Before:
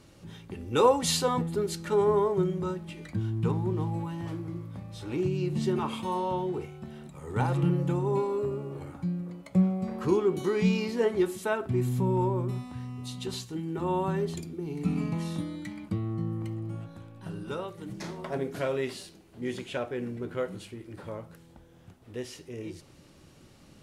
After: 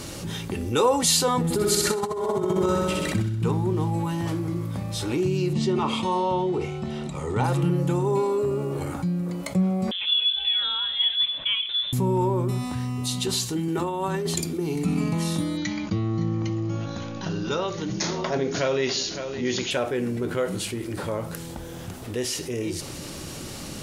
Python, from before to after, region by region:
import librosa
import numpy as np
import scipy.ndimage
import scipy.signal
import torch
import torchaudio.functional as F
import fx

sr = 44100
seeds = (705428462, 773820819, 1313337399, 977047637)

y = fx.chain(x, sr, fx.room_flutter(wall_m=10.9, rt60_s=1.3),
    fx.over_compress(threshold_db=-28.0, ratio=-0.5), at=(1.44, 3.42))
y = fx.chain(y, sr, fx.lowpass(hz=5600.0, slope=12),
    fx.notch(hz=1600.0, q=6.2), at=(5.53, 7.44))
y = fx.chain(y, sr, fx.ladder_highpass(hz=310.0, resonance_pct=35),
    fx.freq_invert(carrier_hz=3800), at=(9.91, 11.93))
y = fx.chain(y, sr, fx.highpass(hz=57.0, slope=12),
    fx.low_shelf(hz=410.0, db=-4.0),
    fx.over_compress(threshold_db=-33.0, ratio=-0.5), at=(13.68, 14.76))
y = fx.chain(y, sr, fx.brickwall_lowpass(high_hz=7000.0),
    fx.high_shelf(hz=4000.0, db=7.0),
    fx.echo_single(ms=564, db=-17.0), at=(15.57, 19.71))
y = fx.bass_treble(y, sr, bass_db=-2, treble_db=7)
y = fx.env_flatten(y, sr, amount_pct=50)